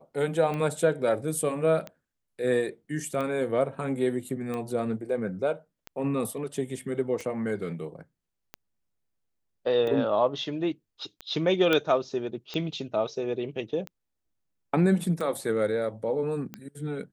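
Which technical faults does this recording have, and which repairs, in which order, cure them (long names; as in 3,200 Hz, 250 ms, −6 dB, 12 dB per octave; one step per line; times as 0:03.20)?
scratch tick 45 rpm −21 dBFS
0:11.73: click −11 dBFS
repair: click removal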